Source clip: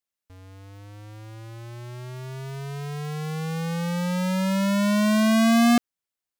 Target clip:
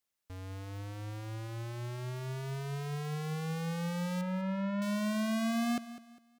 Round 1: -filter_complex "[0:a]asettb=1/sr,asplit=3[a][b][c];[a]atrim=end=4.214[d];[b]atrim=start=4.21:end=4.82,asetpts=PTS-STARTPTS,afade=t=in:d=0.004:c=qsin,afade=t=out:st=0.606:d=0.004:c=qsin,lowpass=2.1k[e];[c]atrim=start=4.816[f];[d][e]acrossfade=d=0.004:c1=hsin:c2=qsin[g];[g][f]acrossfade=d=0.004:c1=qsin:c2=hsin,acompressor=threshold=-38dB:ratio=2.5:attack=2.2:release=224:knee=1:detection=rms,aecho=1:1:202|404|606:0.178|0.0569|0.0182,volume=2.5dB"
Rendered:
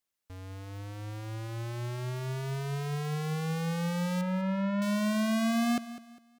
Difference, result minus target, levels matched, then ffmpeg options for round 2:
compressor: peak gain reduction -4 dB
-filter_complex "[0:a]asettb=1/sr,asplit=3[a][b][c];[a]atrim=end=4.214[d];[b]atrim=start=4.21:end=4.82,asetpts=PTS-STARTPTS,afade=t=in:d=0.004:c=qsin,afade=t=out:st=0.606:d=0.004:c=qsin,lowpass=2.1k[e];[c]atrim=start=4.816[f];[d][e]acrossfade=d=0.004:c1=hsin:c2=qsin[g];[g][f]acrossfade=d=0.004:c1=qsin:c2=hsin,acompressor=threshold=-44.5dB:ratio=2.5:attack=2.2:release=224:knee=1:detection=rms,aecho=1:1:202|404|606:0.178|0.0569|0.0182,volume=2.5dB"

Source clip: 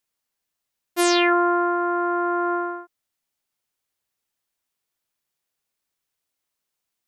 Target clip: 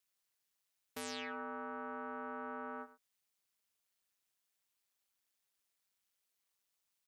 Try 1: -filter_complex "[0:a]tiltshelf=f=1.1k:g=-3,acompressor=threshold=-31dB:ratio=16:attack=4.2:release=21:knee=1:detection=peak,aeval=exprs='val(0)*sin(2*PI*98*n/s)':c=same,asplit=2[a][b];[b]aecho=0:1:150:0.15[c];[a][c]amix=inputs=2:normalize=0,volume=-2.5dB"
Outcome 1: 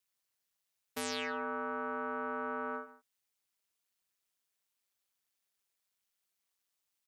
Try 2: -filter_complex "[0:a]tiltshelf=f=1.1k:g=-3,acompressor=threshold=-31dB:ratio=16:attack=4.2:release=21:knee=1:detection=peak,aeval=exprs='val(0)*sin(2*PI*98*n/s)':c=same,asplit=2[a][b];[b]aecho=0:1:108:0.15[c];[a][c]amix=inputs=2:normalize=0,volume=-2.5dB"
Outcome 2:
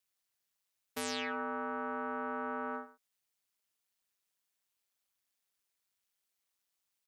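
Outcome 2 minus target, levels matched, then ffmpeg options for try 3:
compressor: peak gain reduction -6 dB
-filter_complex "[0:a]tiltshelf=f=1.1k:g=-3,acompressor=threshold=-37.5dB:ratio=16:attack=4.2:release=21:knee=1:detection=peak,aeval=exprs='val(0)*sin(2*PI*98*n/s)':c=same,asplit=2[a][b];[b]aecho=0:1:108:0.15[c];[a][c]amix=inputs=2:normalize=0,volume=-2.5dB"

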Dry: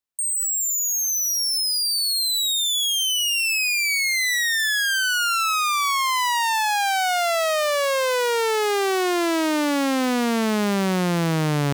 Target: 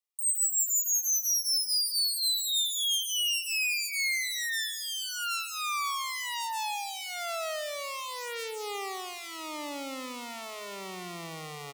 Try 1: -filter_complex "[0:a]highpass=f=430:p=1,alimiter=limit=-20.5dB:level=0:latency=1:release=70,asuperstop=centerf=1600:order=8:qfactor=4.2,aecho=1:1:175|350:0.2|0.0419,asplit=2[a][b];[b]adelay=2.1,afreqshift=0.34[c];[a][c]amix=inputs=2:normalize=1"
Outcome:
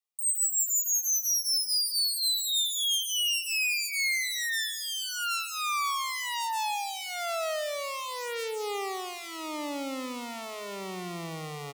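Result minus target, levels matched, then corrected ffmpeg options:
500 Hz band +3.5 dB
-filter_complex "[0:a]highpass=f=900:p=1,alimiter=limit=-20.5dB:level=0:latency=1:release=70,asuperstop=centerf=1600:order=8:qfactor=4.2,aecho=1:1:175|350:0.2|0.0419,asplit=2[a][b];[b]adelay=2.1,afreqshift=0.34[c];[a][c]amix=inputs=2:normalize=1"

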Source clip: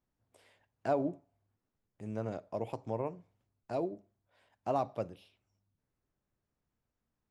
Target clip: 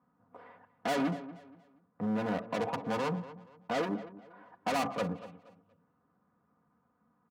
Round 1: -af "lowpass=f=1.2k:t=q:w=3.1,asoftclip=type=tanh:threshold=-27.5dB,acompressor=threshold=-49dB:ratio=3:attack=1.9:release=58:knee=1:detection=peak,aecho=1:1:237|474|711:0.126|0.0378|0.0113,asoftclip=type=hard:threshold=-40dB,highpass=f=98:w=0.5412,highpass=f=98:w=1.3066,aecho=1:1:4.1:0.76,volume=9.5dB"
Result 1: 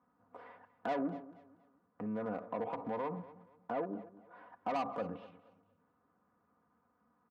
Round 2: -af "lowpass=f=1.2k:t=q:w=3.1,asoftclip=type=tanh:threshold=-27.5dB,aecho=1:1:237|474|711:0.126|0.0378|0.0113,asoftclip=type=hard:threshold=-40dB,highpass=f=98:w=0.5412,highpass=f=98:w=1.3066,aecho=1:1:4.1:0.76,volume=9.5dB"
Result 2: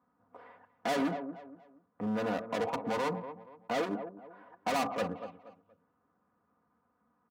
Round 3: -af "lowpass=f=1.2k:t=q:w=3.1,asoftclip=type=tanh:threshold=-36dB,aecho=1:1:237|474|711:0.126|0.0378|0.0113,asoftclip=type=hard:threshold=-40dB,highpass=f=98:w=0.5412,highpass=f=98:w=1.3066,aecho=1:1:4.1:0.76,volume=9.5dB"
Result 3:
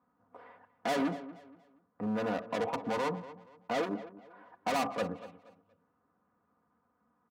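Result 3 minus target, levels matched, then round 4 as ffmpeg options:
125 Hz band -4.0 dB
-af "lowpass=f=1.2k:t=q:w=3.1,equalizer=f=150:t=o:w=0.93:g=8,asoftclip=type=tanh:threshold=-36dB,aecho=1:1:237|474|711:0.126|0.0378|0.0113,asoftclip=type=hard:threshold=-40dB,highpass=f=98:w=0.5412,highpass=f=98:w=1.3066,aecho=1:1:4.1:0.76,volume=9.5dB"

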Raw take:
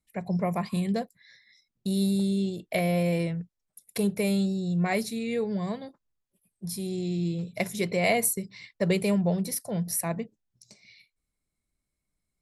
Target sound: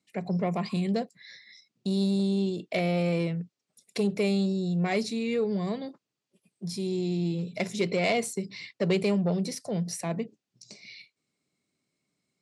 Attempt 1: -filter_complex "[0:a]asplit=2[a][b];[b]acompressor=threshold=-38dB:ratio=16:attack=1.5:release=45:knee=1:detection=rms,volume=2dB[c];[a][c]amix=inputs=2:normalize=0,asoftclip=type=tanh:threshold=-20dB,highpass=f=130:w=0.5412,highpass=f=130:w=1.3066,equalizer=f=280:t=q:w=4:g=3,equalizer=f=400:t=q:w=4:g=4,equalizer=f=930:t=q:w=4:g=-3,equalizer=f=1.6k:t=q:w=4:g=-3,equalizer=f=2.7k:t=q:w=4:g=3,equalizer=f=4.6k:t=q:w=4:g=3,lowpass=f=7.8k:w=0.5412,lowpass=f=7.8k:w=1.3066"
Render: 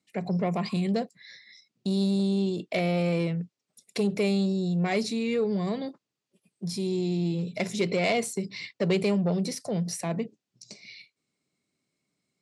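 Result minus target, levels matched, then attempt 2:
compressor: peak gain reduction -10 dB
-filter_complex "[0:a]asplit=2[a][b];[b]acompressor=threshold=-48.5dB:ratio=16:attack=1.5:release=45:knee=1:detection=rms,volume=2dB[c];[a][c]amix=inputs=2:normalize=0,asoftclip=type=tanh:threshold=-20dB,highpass=f=130:w=0.5412,highpass=f=130:w=1.3066,equalizer=f=280:t=q:w=4:g=3,equalizer=f=400:t=q:w=4:g=4,equalizer=f=930:t=q:w=4:g=-3,equalizer=f=1.6k:t=q:w=4:g=-3,equalizer=f=2.7k:t=q:w=4:g=3,equalizer=f=4.6k:t=q:w=4:g=3,lowpass=f=7.8k:w=0.5412,lowpass=f=7.8k:w=1.3066"

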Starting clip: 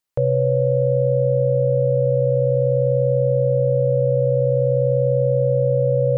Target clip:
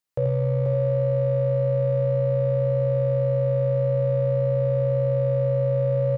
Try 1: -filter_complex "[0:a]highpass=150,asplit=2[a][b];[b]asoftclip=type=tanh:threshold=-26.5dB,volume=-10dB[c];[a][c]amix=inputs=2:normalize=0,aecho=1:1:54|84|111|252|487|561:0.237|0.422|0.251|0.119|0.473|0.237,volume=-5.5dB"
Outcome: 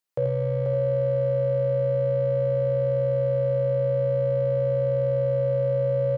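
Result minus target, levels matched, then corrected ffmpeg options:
125 Hz band -3.0 dB
-filter_complex "[0:a]highpass=42,asplit=2[a][b];[b]asoftclip=type=tanh:threshold=-26.5dB,volume=-10dB[c];[a][c]amix=inputs=2:normalize=0,aecho=1:1:54|84|111|252|487|561:0.237|0.422|0.251|0.119|0.473|0.237,volume=-5.5dB"

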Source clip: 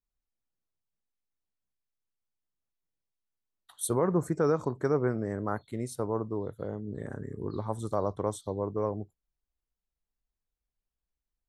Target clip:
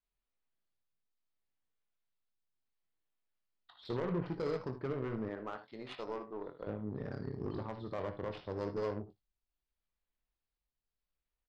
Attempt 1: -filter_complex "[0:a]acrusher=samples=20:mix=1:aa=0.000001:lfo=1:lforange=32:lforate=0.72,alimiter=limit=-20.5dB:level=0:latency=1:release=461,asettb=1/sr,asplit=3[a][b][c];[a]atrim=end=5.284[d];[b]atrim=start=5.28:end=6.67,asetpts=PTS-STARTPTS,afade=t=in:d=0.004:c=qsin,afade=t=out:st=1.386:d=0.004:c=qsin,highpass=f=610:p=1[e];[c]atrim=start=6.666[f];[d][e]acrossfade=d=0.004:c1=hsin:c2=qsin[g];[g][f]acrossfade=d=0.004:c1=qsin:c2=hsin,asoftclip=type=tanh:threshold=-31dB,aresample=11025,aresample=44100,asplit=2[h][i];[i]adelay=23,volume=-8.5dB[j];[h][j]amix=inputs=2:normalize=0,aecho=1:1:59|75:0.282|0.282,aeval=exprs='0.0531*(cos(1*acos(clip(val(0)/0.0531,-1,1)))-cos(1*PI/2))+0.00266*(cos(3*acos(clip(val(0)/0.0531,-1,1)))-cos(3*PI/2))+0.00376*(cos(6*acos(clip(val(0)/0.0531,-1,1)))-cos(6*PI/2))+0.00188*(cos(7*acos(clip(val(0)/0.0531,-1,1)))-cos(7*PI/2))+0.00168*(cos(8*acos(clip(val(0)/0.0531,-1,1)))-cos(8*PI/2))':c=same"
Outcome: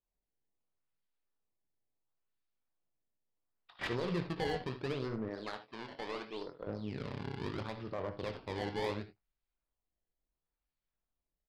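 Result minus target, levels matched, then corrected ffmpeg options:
decimation with a swept rate: distortion +14 dB
-filter_complex "[0:a]acrusher=samples=4:mix=1:aa=0.000001:lfo=1:lforange=6.4:lforate=0.72,alimiter=limit=-20.5dB:level=0:latency=1:release=461,asettb=1/sr,asplit=3[a][b][c];[a]atrim=end=5.284[d];[b]atrim=start=5.28:end=6.67,asetpts=PTS-STARTPTS,afade=t=in:d=0.004:c=qsin,afade=t=out:st=1.386:d=0.004:c=qsin,highpass=f=610:p=1[e];[c]atrim=start=6.666[f];[d][e]acrossfade=d=0.004:c1=hsin:c2=qsin[g];[g][f]acrossfade=d=0.004:c1=qsin:c2=hsin,asoftclip=type=tanh:threshold=-31dB,aresample=11025,aresample=44100,asplit=2[h][i];[i]adelay=23,volume=-8.5dB[j];[h][j]amix=inputs=2:normalize=0,aecho=1:1:59|75:0.282|0.282,aeval=exprs='0.0531*(cos(1*acos(clip(val(0)/0.0531,-1,1)))-cos(1*PI/2))+0.00266*(cos(3*acos(clip(val(0)/0.0531,-1,1)))-cos(3*PI/2))+0.00376*(cos(6*acos(clip(val(0)/0.0531,-1,1)))-cos(6*PI/2))+0.00188*(cos(7*acos(clip(val(0)/0.0531,-1,1)))-cos(7*PI/2))+0.00168*(cos(8*acos(clip(val(0)/0.0531,-1,1)))-cos(8*PI/2))':c=same"

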